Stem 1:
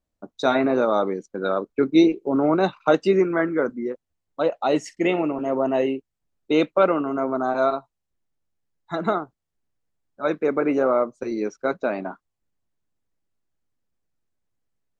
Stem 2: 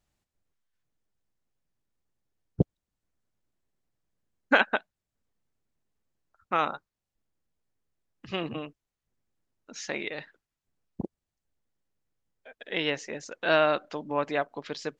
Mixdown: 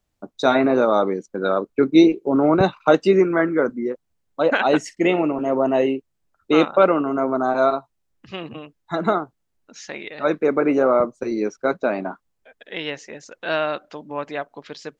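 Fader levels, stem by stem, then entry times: +3.0, 0.0 dB; 0.00, 0.00 s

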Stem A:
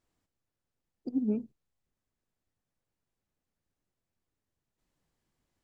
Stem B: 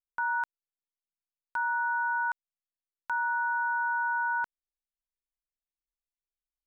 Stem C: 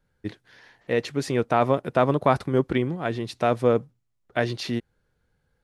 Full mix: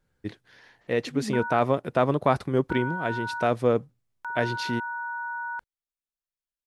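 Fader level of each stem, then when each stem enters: -3.5, -4.0, -2.0 dB; 0.00, 1.15, 0.00 s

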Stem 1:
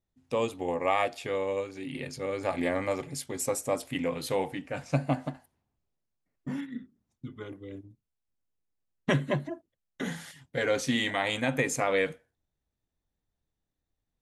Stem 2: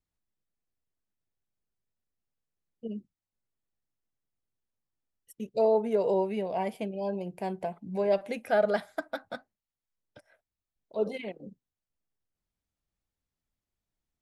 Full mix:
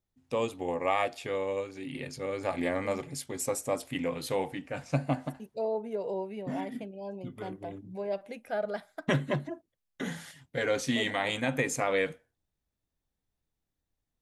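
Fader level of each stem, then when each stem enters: -1.5, -7.5 dB; 0.00, 0.00 s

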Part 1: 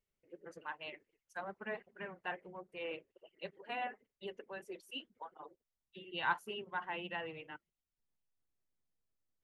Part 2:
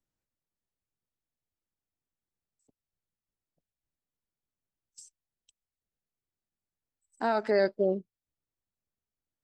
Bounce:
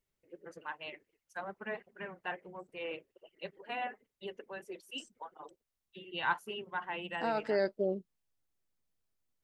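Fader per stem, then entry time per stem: +2.0, -5.5 dB; 0.00, 0.00 s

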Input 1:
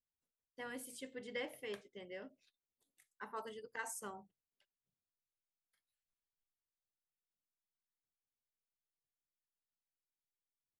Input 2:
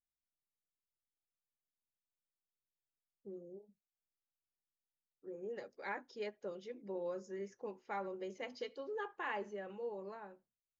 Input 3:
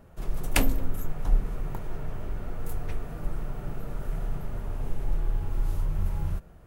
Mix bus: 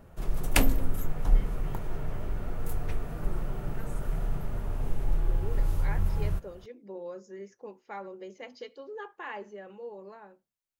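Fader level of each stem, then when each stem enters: -10.0, +1.0, +0.5 dB; 0.00, 0.00, 0.00 s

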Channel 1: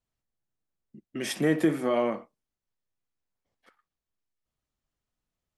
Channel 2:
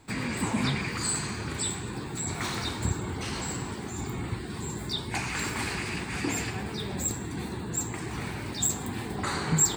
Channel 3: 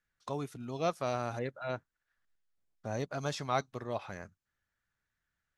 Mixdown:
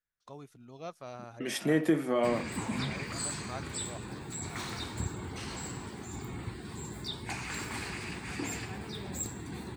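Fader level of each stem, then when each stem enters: -2.5, -6.5, -10.5 dB; 0.25, 2.15, 0.00 s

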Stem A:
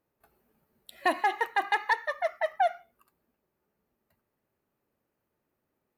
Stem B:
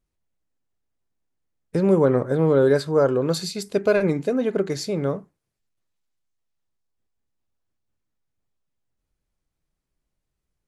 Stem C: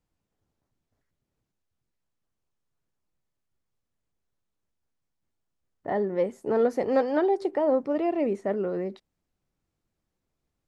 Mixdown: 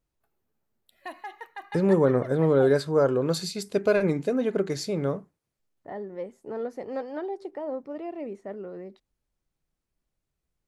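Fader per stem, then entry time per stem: -13.0, -3.0, -9.5 dB; 0.00, 0.00, 0.00 s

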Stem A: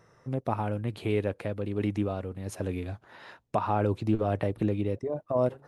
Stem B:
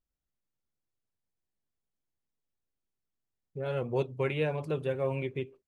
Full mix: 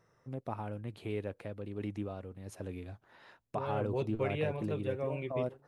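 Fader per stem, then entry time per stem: -9.5, -5.0 dB; 0.00, 0.00 s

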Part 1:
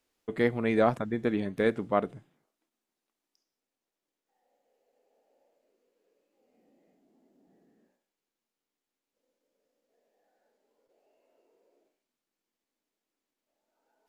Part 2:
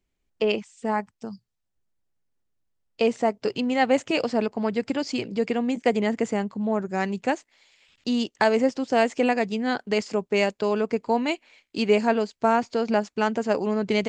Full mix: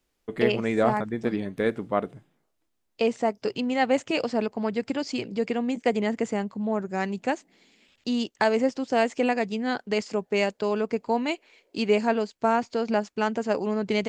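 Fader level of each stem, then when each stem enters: +1.0, -2.0 dB; 0.00, 0.00 s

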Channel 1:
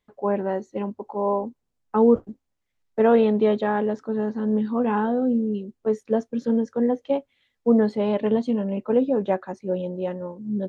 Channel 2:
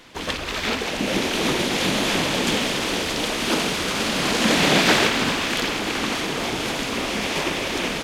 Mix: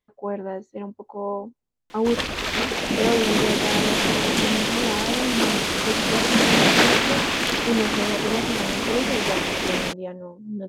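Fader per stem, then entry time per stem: -5.0, +0.5 dB; 0.00, 1.90 s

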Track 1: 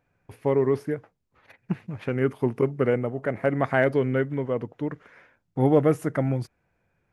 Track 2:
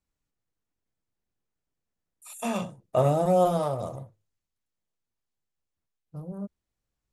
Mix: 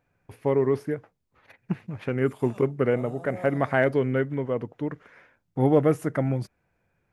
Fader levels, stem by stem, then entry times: -0.5, -19.0 dB; 0.00, 0.00 s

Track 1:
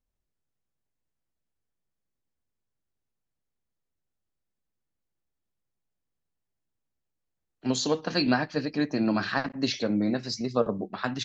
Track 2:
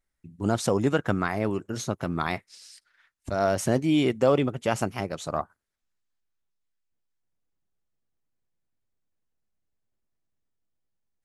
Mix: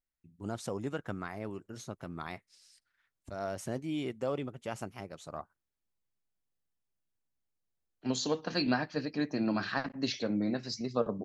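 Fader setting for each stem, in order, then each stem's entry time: -5.5, -13.0 dB; 0.40, 0.00 s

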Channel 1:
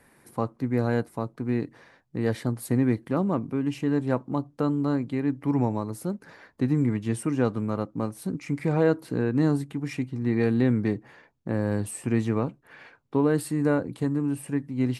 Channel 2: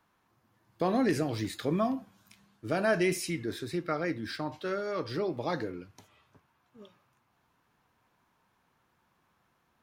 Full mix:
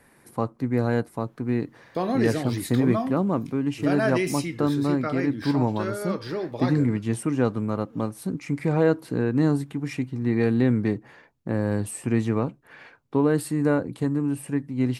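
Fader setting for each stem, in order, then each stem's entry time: +1.5, +2.0 dB; 0.00, 1.15 s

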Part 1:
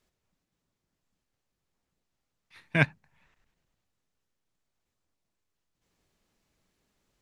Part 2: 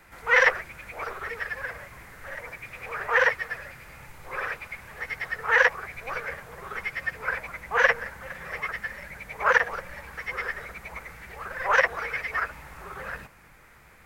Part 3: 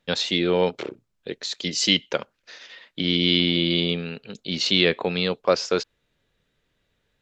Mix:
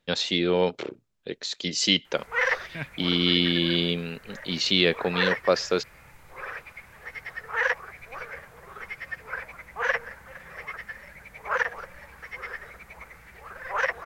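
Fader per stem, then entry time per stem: -12.0, -5.5, -2.0 dB; 0.00, 2.05, 0.00 s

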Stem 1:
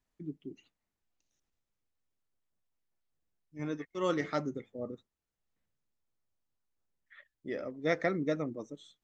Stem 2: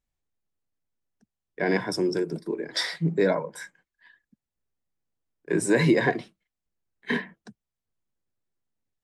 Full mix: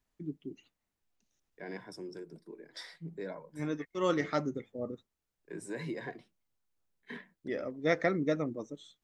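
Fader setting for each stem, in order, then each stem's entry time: +1.5, -18.5 dB; 0.00, 0.00 s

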